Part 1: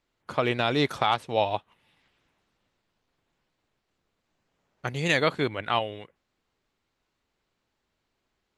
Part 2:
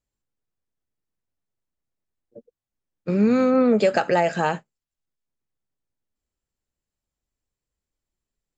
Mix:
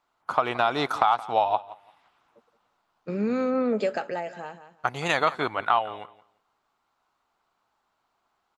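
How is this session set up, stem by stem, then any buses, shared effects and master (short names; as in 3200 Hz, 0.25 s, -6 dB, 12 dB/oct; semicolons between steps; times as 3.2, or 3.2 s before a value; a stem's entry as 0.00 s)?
-0.5 dB, 0.00 s, no send, echo send -18.5 dB, band shelf 980 Hz +11.5 dB 1.3 oct; compressor 3:1, threshold -18 dBFS, peak gain reduction 8 dB
-5.0 dB, 0.00 s, no send, echo send -22 dB, high shelf 5100 Hz -6.5 dB; auto duck -16 dB, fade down 1.05 s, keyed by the first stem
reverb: off
echo: feedback echo 0.172 s, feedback 19%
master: low shelf 160 Hz -10 dB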